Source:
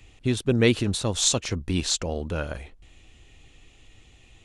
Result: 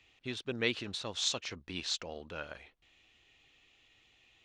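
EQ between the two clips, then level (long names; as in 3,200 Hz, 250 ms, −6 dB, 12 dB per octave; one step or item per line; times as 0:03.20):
high-frequency loss of the air 220 metres
spectral tilt +4 dB per octave
−8.5 dB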